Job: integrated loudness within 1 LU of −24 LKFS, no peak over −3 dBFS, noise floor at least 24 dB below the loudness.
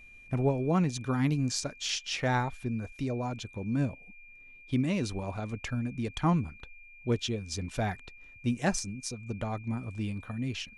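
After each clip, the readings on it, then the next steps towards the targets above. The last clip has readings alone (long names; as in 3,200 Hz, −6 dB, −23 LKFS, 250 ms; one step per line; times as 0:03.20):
interfering tone 2,400 Hz; level of the tone −51 dBFS; integrated loudness −32.0 LKFS; sample peak −14.0 dBFS; target loudness −24.0 LKFS
→ notch filter 2,400 Hz, Q 30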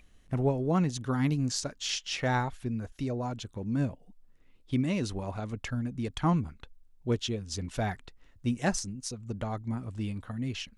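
interfering tone none found; integrated loudness −32.0 LKFS; sample peak −14.0 dBFS; target loudness −24.0 LKFS
→ level +8 dB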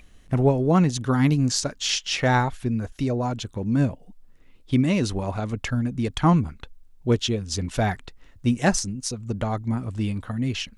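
integrated loudness −24.0 LKFS; sample peak −6.0 dBFS; background noise floor −52 dBFS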